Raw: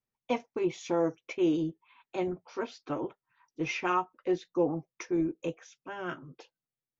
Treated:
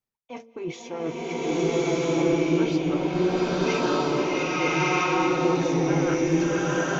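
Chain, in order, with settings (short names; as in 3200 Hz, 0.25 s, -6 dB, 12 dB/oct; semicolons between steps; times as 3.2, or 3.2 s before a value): reverse; compressor 6:1, threshold -39 dBFS, peak gain reduction 16 dB; reverse; de-hum 113.9 Hz, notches 5; AGC gain up to 8 dB; bloom reverb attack 1.26 s, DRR -11.5 dB; gain +1.5 dB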